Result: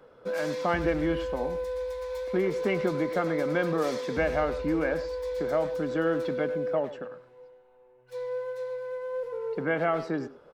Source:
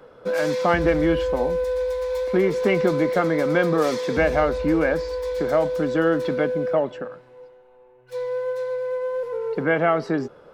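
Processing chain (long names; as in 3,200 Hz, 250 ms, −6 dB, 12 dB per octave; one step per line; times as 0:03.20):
far-end echo of a speakerphone 100 ms, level −12 dB
level −7 dB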